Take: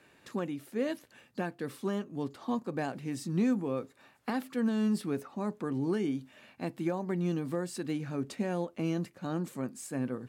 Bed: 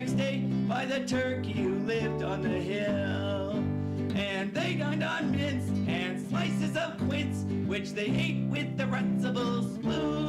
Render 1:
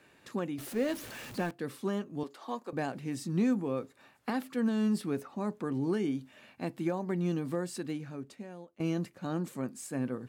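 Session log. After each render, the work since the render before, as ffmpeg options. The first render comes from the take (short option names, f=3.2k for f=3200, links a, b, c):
-filter_complex "[0:a]asettb=1/sr,asplit=3[a][b][c];[a]atrim=end=0.584[d];[b]atrim=start=0.58:end=1.51,asetpts=PTS-STARTPTS,afade=t=in:d=0.004:c=qsin,afade=t=out:st=0.926:d=0.004:c=qsin,aeval=exprs='val(0)+0.5*0.01*sgn(val(0))':c=same[e];[c]atrim=start=1.506[f];[d][e]acrossfade=d=0.004:c1=hsin:c2=qsin[g];[g][f]acrossfade=d=0.004:c1=qsin:c2=hsin,asettb=1/sr,asplit=3[h][i][j];[h]atrim=end=2.234[k];[i]atrim=start=2.23:end=2.73,asetpts=PTS-STARTPTS,afade=t=in:d=0.004:c=qsin,afade=t=out:st=0.496:d=0.004:c=qsin,highpass=420[l];[j]atrim=start=2.726[m];[k][l]acrossfade=d=0.004:c1=hsin:c2=qsin[n];[n][m]acrossfade=d=0.004:c1=qsin:c2=hsin,asplit=2[o][p];[o]atrim=end=8.8,asetpts=PTS-STARTPTS,afade=t=out:st=7.74:d=1.06:c=qua:silence=0.158489[q];[p]atrim=start=8.8,asetpts=PTS-STARTPTS,afade=t=in:d=0.004:c=hsin:silence=0.158489[r];[q][r]concat=n=2:v=0:a=1"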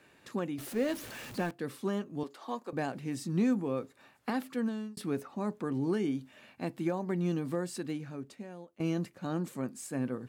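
-filter_complex "[0:a]asplit=2[a][b];[a]atrim=end=4.97,asetpts=PTS-STARTPTS,afade=t=out:st=4.52:d=0.45[c];[b]atrim=start=4.97,asetpts=PTS-STARTPTS,afade=t=in:d=0.004:c=hsin[d];[c][d]concat=n=2:v=0:a=1"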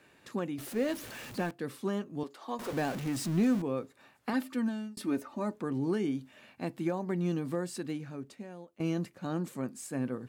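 -filter_complex "[0:a]asettb=1/sr,asplit=3[a][b][c];[a]atrim=end=2.594[d];[b]atrim=start=2.59:end=3.62,asetpts=PTS-STARTPTS,afade=t=in:d=0.004:c=qsin,afade=t=out:st=1.026:d=0.004:c=qsin,aeval=exprs='val(0)+0.5*0.0158*sgn(val(0))':c=same[e];[c]atrim=start=3.616[f];[d][e]acrossfade=d=0.004:c1=hsin:c2=qsin[g];[g][f]acrossfade=d=0.004:c1=qsin:c2=hsin,asettb=1/sr,asplit=3[h][i][j];[h]atrim=end=4.334[k];[i]atrim=start=4.33:end=5.56,asetpts=PTS-STARTPTS,afade=t=in:d=0.004:c=qsin,afade=t=out:st=1.226:d=0.004:c=qsin,aecho=1:1:3.3:0.65,atrim=end_sample=54243[l];[j]atrim=start=5.556[m];[k][l]acrossfade=d=0.004:c1=hsin:c2=qsin[n];[n][m]acrossfade=d=0.004:c1=qsin:c2=hsin"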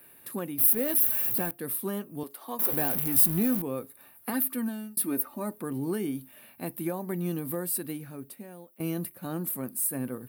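-af "aexciter=amount=15.6:drive=8.5:freq=10k"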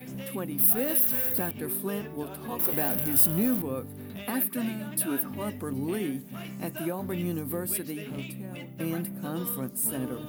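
-filter_complex "[1:a]volume=-10dB[a];[0:a][a]amix=inputs=2:normalize=0"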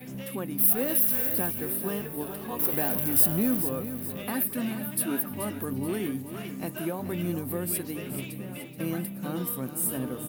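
-af "aecho=1:1:430|860|1290|1720|2150:0.299|0.137|0.0632|0.0291|0.0134"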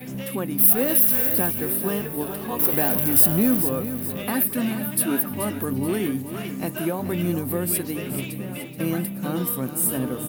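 -af "volume=6dB,alimiter=limit=-3dB:level=0:latency=1"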